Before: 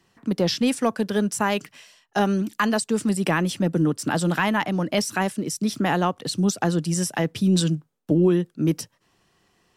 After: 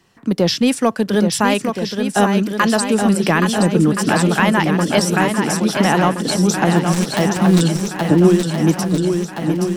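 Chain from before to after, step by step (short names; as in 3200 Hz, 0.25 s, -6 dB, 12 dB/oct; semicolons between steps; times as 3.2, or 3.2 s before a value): 6.76–7.61 switching dead time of 0.18 ms; on a send: swung echo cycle 1.372 s, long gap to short 1.5:1, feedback 51%, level -6 dB; on the sum: gain +6 dB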